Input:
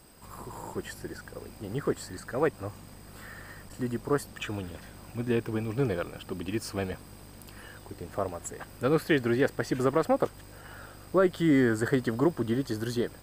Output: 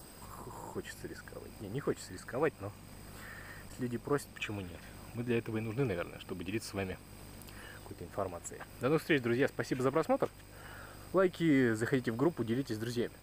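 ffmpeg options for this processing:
-af "acompressor=mode=upward:threshold=-37dB:ratio=2.5,adynamicequalizer=threshold=0.002:dfrequency=2400:dqfactor=3.2:tfrequency=2400:tqfactor=3.2:attack=5:release=100:ratio=0.375:range=3:mode=boostabove:tftype=bell,volume=-5.5dB"

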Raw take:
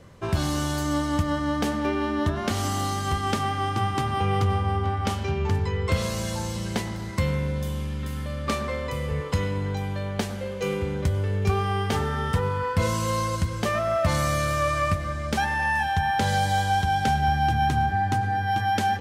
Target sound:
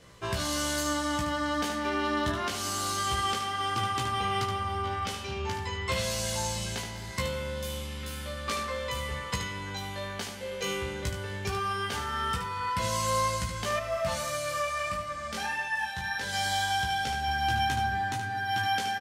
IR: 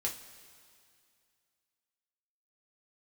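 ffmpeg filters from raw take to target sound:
-filter_complex "[0:a]tiltshelf=f=1.3k:g=-6,asplit=2[a][b];[b]adelay=17,volume=-3.5dB[c];[a][c]amix=inputs=2:normalize=0,alimiter=limit=-16.5dB:level=0:latency=1:release=490,highshelf=f=10k:g=-4,aecho=1:1:15|74:0.398|0.447,asettb=1/sr,asplit=3[d][e][f];[d]atrim=end=13.794[g];[e]atrim=start=13.79:end=16.33,asetpts=PTS-STARTPTS,afade=t=in:d=0.004:c=qsin,afade=t=out:st=2.536:d=0.004:c=qsin,flanger=delay=20:depth=2.6:speed=1.6[h];[f]atrim=start=16.326[i];[g][h]acrossfade=d=0.004:c1=hsin:c2=qsin[j];[j][i]acrossfade=d=0.004:c1=qsin:c2=hsin,volume=-3dB"

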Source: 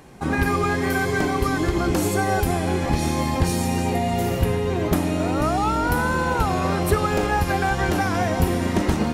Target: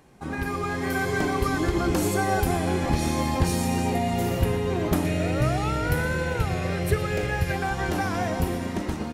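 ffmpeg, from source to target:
-filter_complex "[0:a]asettb=1/sr,asplit=3[a][b][c];[a]atrim=end=5.054[d];[b]atrim=start=5.05:end=7.56,asetpts=PTS-STARTPTS,afade=t=in:d=0.004:c=qsin,afade=t=out:st=2.506:d=0.004:c=qsin,equalizer=f=125:t=o:w=1:g=11,equalizer=f=250:t=o:w=1:g=-8,equalizer=f=500:t=o:w=1:g=6,equalizer=f=1k:t=o:w=1:g=-11,equalizer=f=2k:t=o:w=1:g=8[e];[c]atrim=start=7.556[f];[d][e]acrossfade=d=0.004:c1=hsin:c2=qsin[g];[g][f]acrossfade=d=0.004:c1=qsin:c2=hsin,dynaudnorm=f=150:g=11:m=11.5dB,aecho=1:1:119:0.168,volume=-9dB"

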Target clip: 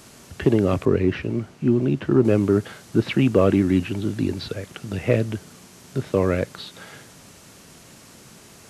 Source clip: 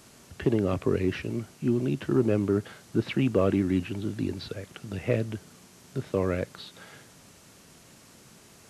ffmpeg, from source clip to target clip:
-filter_complex "[0:a]asettb=1/sr,asplit=3[a][b][c];[a]atrim=end=0.854[d];[b]atrim=start=0.85:end=2.25,asetpts=PTS-STARTPTS,afade=t=in:d=0.004:c=qsin,afade=t=out:st=1.396:d=0.004:c=qsin,lowpass=f=2.4k:p=1[e];[c]atrim=start=2.246[f];[d][e]acrossfade=d=0.004:c1=hsin:c2=qsin[g];[g][f]acrossfade=d=0.004:c1=qsin:c2=hsin,volume=6.5dB"

